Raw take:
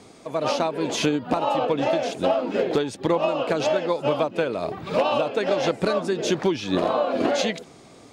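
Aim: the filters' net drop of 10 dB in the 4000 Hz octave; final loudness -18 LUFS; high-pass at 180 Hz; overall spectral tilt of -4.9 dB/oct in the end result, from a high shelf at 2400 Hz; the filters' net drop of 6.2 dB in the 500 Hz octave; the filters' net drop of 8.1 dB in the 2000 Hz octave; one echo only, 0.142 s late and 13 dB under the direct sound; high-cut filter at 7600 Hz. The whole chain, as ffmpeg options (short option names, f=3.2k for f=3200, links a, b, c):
-af "highpass=180,lowpass=7.6k,equalizer=f=500:t=o:g=-7,equalizer=f=2k:t=o:g=-7,highshelf=f=2.4k:g=-3.5,equalizer=f=4k:t=o:g=-7,aecho=1:1:142:0.224,volume=11dB"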